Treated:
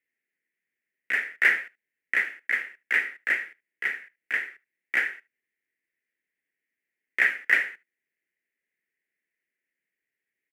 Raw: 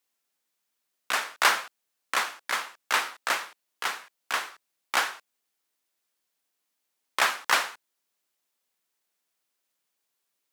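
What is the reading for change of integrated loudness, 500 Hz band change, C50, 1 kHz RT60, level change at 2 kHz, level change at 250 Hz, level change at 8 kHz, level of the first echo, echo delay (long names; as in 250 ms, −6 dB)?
+2.0 dB, −7.0 dB, no reverb audible, no reverb audible, +5.0 dB, −1.5 dB, below −15 dB, −23.0 dB, 75 ms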